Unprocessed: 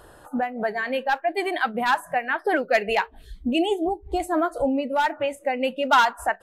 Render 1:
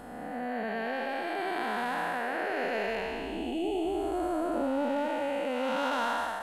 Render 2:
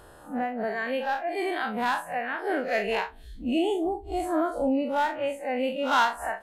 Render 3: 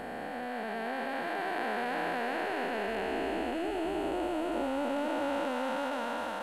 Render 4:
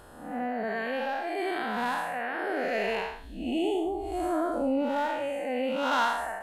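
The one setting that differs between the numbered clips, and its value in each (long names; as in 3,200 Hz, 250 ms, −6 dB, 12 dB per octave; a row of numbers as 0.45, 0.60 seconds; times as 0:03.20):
spectrum smeared in time, width: 578, 96, 1,780, 235 milliseconds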